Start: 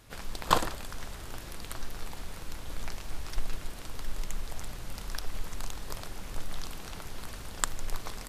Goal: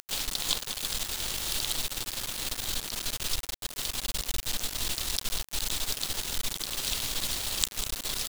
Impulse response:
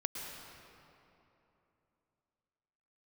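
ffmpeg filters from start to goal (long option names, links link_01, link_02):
-filter_complex "[0:a]acompressor=threshold=-36dB:ratio=8,equalizer=frequency=3000:width=0.96:gain=14.5,asplit=2[link_01][link_02];[1:a]atrim=start_sample=2205,highshelf=frequency=7600:gain=7[link_03];[link_02][link_03]afir=irnorm=-1:irlink=0,volume=-10.5dB[link_04];[link_01][link_04]amix=inputs=2:normalize=0,acompressor=mode=upward:threshold=-44dB:ratio=2.5,firequalizer=gain_entry='entry(190,0);entry(1500,-11);entry(3900,9)':delay=0.05:min_phase=1,asplit=3[link_05][link_06][link_07];[link_06]asetrate=66075,aresample=44100,atempo=0.66742,volume=-14dB[link_08];[link_07]asetrate=88200,aresample=44100,atempo=0.5,volume=-6dB[link_09];[link_05][link_08][link_09]amix=inputs=3:normalize=0,bandreject=frequency=60:width_type=h:width=6,bandreject=frequency=120:width_type=h:width=6,bandreject=frequency=180:width_type=h:width=6,aecho=1:1:200|400|600:0.282|0.0564|0.0113,acrusher=bits=4:mix=0:aa=0.000001,volume=-1dB"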